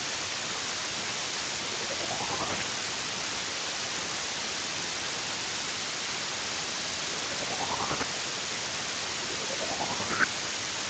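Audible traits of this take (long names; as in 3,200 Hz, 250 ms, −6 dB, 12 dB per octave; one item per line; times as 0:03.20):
chopped level 10 Hz, depth 65%, duty 45%
phaser sweep stages 8, 0.54 Hz, lowest notch 630–1,600 Hz
a quantiser's noise floor 6 bits, dither triangular
Speex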